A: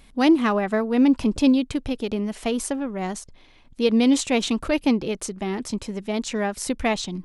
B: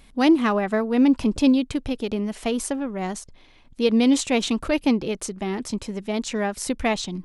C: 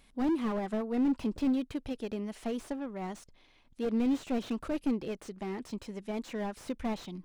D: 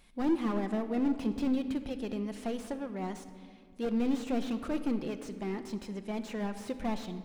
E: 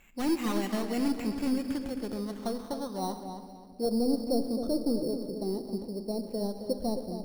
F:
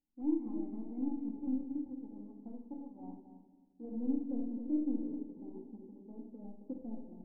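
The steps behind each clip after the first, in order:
no processing that can be heard
low-shelf EQ 260 Hz −4 dB; slew-rate limiting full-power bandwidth 47 Hz; level −8.5 dB
rectangular room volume 3,300 cubic metres, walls mixed, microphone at 0.88 metres
low-pass filter sweep 2,400 Hz → 550 Hz, 0:01.04–0:04.26; sample-rate reduction 4,900 Hz, jitter 0%; on a send: feedback echo with a low-pass in the loop 267 ms, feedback 28%, low-pass 4,900 Hz, level −8.5 dB
power curve on the samples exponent 1.4; formant resonators in series u; rectangular room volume 670 cubic metres, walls furnished, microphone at 2.1 metres; level −4 dB

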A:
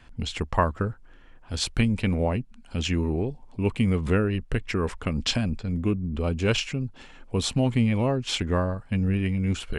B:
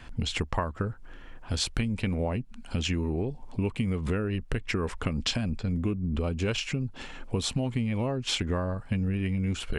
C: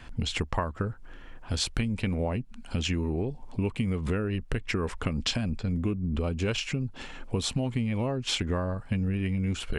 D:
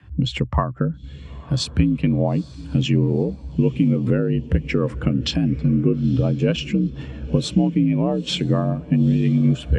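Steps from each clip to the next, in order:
downward compressor 6 to 1, threshold −32 dBFS, peak gain reduction 15 dB; level +6 dB
no processing that can be heard
feedback delay with all-pass diffusion 915 ms, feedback 52%, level −12 dB; frequency shifter +49 Hz; every bin expanded away from the loudest bin 1.5 to 1; level +8 dB

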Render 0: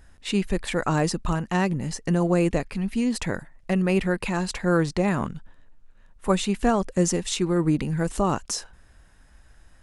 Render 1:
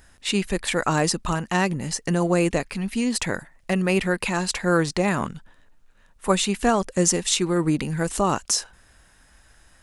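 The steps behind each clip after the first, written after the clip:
spectral tilt +1.5 dB per octave
level +3 dB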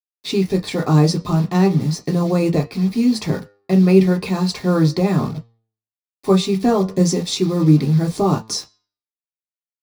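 bit-depth reduction 6 bits, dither none
flanger 0.37 Hz, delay 8.5 ms, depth 2.2 ms, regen +88%
convolution reverb, pre-delay 3 ms, DRR 0.5 dB
level −4 dB

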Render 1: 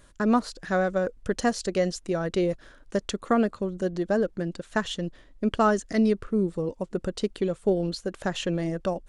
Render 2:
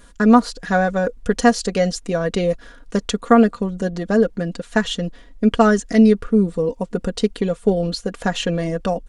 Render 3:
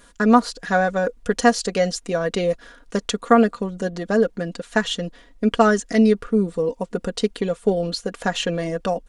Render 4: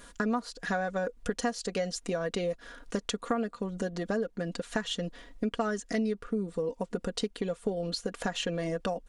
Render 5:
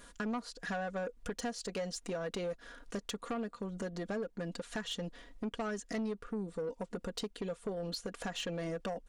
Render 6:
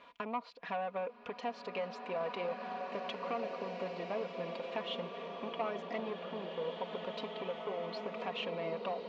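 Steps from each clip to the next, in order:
comb filter 4.2 ms, depth 68%; level +6 dB
low-shelf EQ 200 Hz −8.5 dB
downward compressor 4 to 1, threshold −30 dBFS, peak gain reduction 17.5 dB
soft clipping −26.5 dBFS, distortion −14 dB; level −4 dB
loudspeaker in its box 210–3,600 Hz, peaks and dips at 210 Hz −5 dB, 320 Hz −6 dB, 660 Hz +5 dB, 1,000 Hz +10 dB, 1,600 Hz −9 dB, 2,400 Hz +9 dB; slow-attack reverb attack 2,340 ms, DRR 2 dB; level −1.5 dB

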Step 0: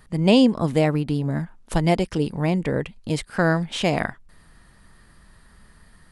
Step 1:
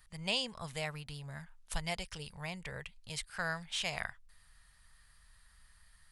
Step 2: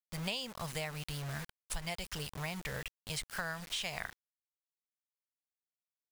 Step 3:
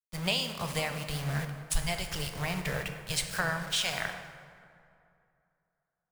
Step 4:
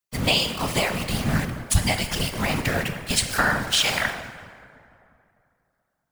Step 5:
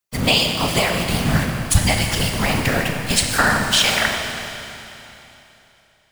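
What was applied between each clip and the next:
guitar amp tone stack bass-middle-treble 10-0-10; level −5 dB
bit-depth reduction 8 bits, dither none; downward compressor 5 to 1, threshold −40 dBFS, peak gain reduction 11 dB; level +5 dB
dense smooth reverb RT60 4.7 s, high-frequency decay 0.45×, DRR 3.5 dB; multiband upward and downward expander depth 70%; level +5.5 dB
random phases in short frames; level +9 dB
four-comb reverb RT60 3.1 s, combs from 28 ms, DRR 5 dB; level +4 dB

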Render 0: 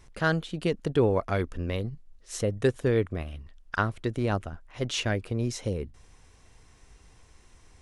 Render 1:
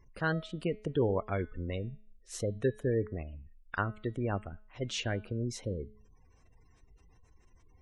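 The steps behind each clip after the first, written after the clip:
gate on every frequency bin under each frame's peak −25 dB strong
hum removal 213.3 Hz, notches 21
level −5.5 dB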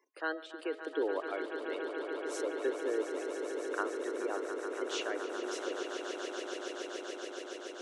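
Butterworth high-pass 290 Hz 72 dB per octave
on a send: echo that builds up and dies away 142 ms, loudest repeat 8, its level −10 dB
on the sum: level −3 dB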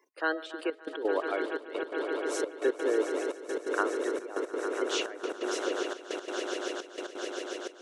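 gate pattern "x.xxxxxx.." 172 BPM −12 dB
level +6 dB

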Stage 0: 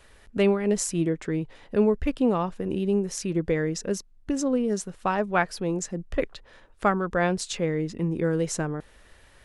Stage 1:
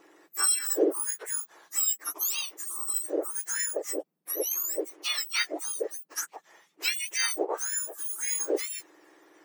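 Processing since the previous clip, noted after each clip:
frequency axis turned over on the octave scale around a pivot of 1,800 Hz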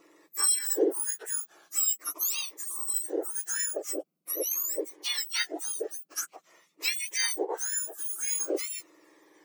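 phaser whose notches keep moving one way falling 0.45 Hz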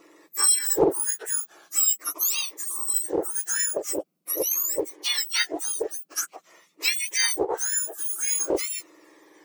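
mains-hum notches 50/100/150 Hz
highs frequency-modulated by the lows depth 0.42 ms
level +5.5 dB

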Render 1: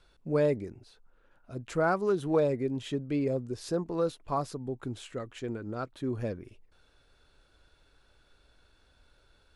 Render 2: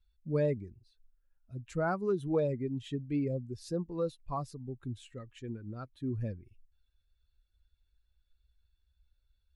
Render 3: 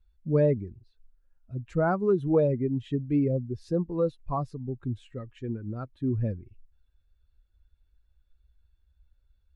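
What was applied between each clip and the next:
spectral dynamics exaggerated over time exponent 1.5; low-shelf EQ 220 Hz +9 dB; level −4.5 dB
low-pass filter 1,200 Hz 6 dB per octave; level +7.5 dB

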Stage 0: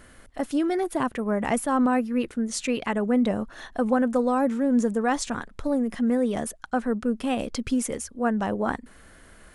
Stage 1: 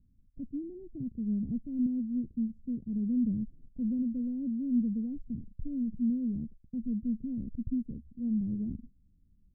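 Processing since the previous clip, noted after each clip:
noise gate −41 dBFS, range −11 dB
inverse Chebyshev low-pass filter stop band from 960 Hz, stop band 70 dB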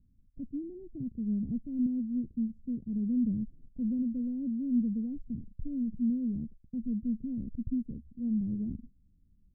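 no processing that can be heard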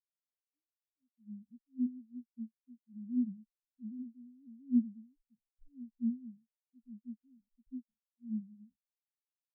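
fade in at the beginning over 1.53 s
every bin expanded away from the loudest bin 4 to 1
level +1 dB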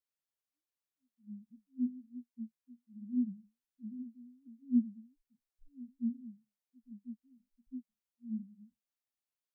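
flanger 1.3 Hz, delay 5.7 ms, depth 6.8 ms, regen −69%
level +3.5 dB

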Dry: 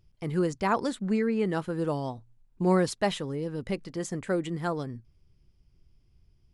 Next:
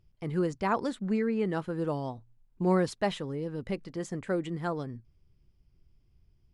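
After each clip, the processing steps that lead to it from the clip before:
high-shelf EQ 5,200 Hz −7.5 dB
level −2 dB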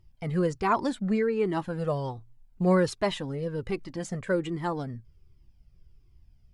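flanger whose copies keep moving one way falling 1.3 Hz
level +8 dB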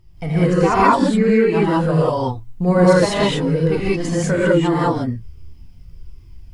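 in parallel at +0.5 dB: downward compressor, threshold −35 dBFS, peak gain reduction 16 dB
on the sum: reverb whose tail is shaped and stops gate 220 ms rising, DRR −8 dB
level +1.5 dB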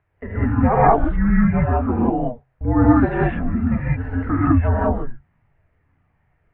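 background noise violet −51 dBFS
single-sideband voice off tune −250 Hz 210–2,200 Hz

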